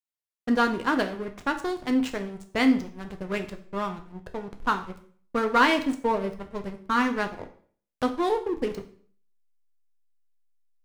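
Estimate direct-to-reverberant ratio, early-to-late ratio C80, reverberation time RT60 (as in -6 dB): 5.5 dB, 16.0 dB, 0.50 s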